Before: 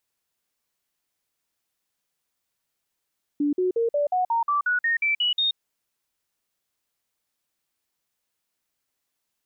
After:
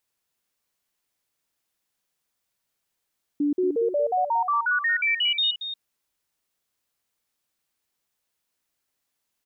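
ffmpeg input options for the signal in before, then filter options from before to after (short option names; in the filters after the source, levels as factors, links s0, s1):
-f lavfi -i "aevalsrc='0.106*clip(min(mod(t,0.18),0.13-mod(t,0.18))/0.005,0,1)*sin(2*PI*291*pow(2,floor(t/0.18)/3)*mod(t,0.18))':d=2.16:s=44100"
-af "aecho=1:1:230:0.335"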